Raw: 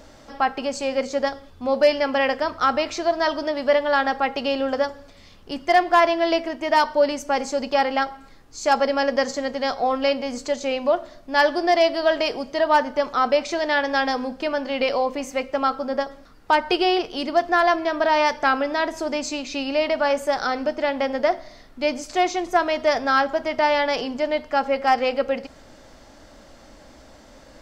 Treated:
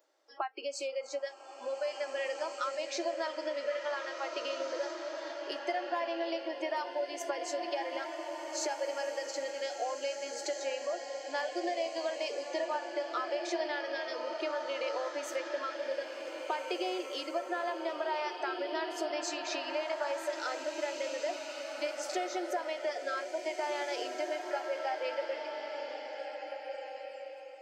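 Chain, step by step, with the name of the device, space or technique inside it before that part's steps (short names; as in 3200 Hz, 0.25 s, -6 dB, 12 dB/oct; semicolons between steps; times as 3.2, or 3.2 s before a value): serial compression, leveller first (compressor 2:1, threshold -21 dBFS, peak gain reduction 5.5 dB; compressor 6:1, threshold -32 dBFS, peak gain reduction 14 dB); spectral noise reduction 24 dB; elliptic high-pass 330 Hz, stop band 40 dB; bloom reverb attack 1.92 s, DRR 3.5 dB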